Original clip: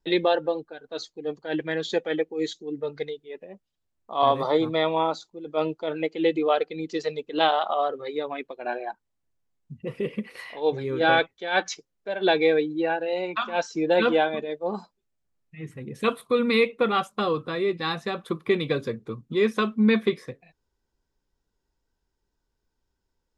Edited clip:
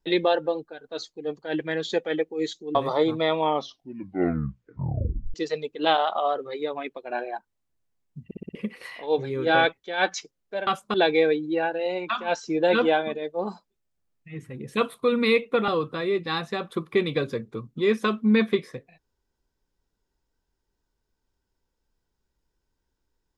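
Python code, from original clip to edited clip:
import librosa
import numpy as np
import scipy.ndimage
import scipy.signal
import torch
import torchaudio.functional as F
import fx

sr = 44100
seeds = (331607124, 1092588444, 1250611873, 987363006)

y = fx.edit(x, sr, fx.cut(start_s=2.75, length_s=1.54),
    fx.tape_stop(start_s=4.93, length_s=1.95),
    fx.stutter_over(start_s=9.79, slice_s=0.06, count=5),
    fx.move(start_s=16.95, length_s=0.27, to_s=12.21), tone=tone)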